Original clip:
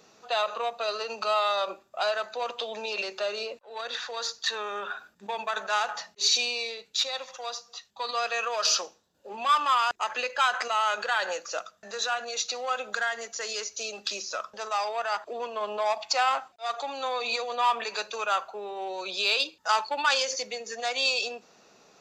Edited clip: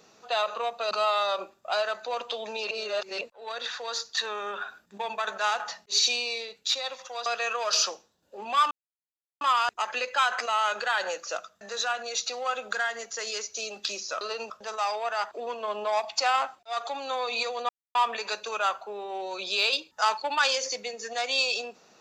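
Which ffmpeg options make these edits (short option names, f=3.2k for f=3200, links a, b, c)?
-filter_complex "[0:a]asplit=9[a][b][c][d][e][f][g][h][i];[a]atrim=end=0.912[j];[b]atrim=start=1.198:end=3.002[k];[c]atrim=start=2.998:end=3.502,asetpts=PTS-STARTPTS,areverse[l];[d]atrim=start=3.498:end=7.552[m];[e]atrim=start=8.178:end=9.63,asetpts=PTS-STARTPTS,afade=t=out:st=1.448:d=0.004:c=hsin,apad=pad_dur=0.7[n];[f]atrim=start=9.63:end=14.432,asetpts=PTS-STARTPTS,afade=t=in:d=0.004:c=hsin[o];[g]atrim=start=0.908:end=1.202[p];[h]atrim=start=14.428:end=17.62,asetpts=PTS-STARTPTS,afade=t=out:st=3.188:d=0.004:c=hsin,apad=pad_dur=0.26[q];[i]atrim=start=17.62,asetpts=PTS-STARTPTS,afade=t=in:d=0.004:c=hsin[r];[j][k]acrossfade=d=0.004:c1=hsin:c2=hsin[s];[s][l]acrossfade=d=0.004:c1=hsin:c2=hsin[t];[t][m]acrossfade=d=0.004:c1=hsin:c2=hsin[u];[n][o]concat=n=2:v=0:a=1[v];[u][v]acrossfade=d=0.004:c1=hsin:c2=hsin[w];[w][p]acrossfade=d=0.004:c1=hsin:c2=hsin[x];[q][r]concat=n=2:v=0:a=1[y];[x][y]acrossfade=d=0.004:c1=hsin:c2=hsin"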